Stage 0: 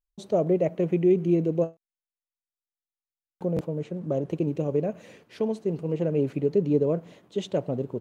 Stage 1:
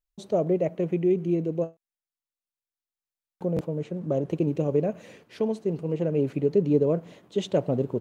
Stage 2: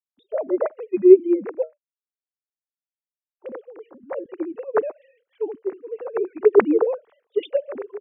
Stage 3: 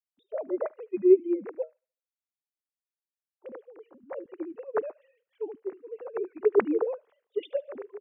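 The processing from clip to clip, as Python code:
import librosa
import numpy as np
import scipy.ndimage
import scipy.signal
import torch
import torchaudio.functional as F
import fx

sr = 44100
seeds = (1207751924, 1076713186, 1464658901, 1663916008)

y1 = fx.rider(x, sr, range_db=10, speed_s=2.0)
y2 = fx.sine_speech(y1, sr)
y2 = fx.band_widen(y2, sr, depth_pct=70)
y2 = y2 * 10.0 ** (1.5 / 20.0)
y3 = fx.echo_wet_highpass(y2, sr, ms=74, feedback_pct=36, hz=1700.0, wet_db=-19.0)
y3 = y3 * 10.0 ** (-8.0 / 20.0)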